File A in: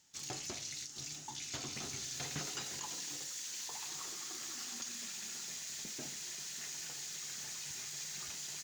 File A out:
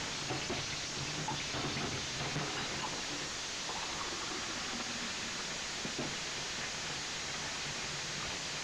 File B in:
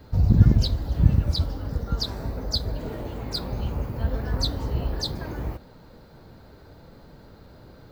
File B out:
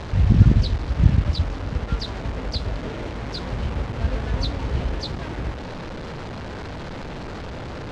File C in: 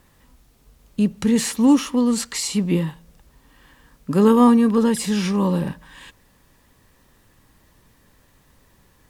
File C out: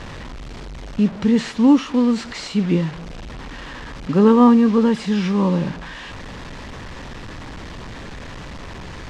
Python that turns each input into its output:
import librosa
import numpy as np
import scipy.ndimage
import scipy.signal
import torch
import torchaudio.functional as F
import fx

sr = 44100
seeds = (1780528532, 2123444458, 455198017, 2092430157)

y = fx.delta_mod(x, sr, bps=64000, step_db=-28.0)
y = fx.air_absorb(y, sr, metres=160.0)
y = y * librosa.db_to_amplitude(2.0)